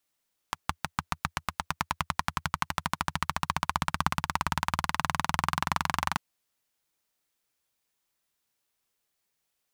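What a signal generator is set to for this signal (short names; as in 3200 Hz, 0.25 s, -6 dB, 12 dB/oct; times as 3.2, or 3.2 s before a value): single-cylinder engine model, changing speed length 5.64 s, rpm 700, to 2800, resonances 83/150/1000 Hz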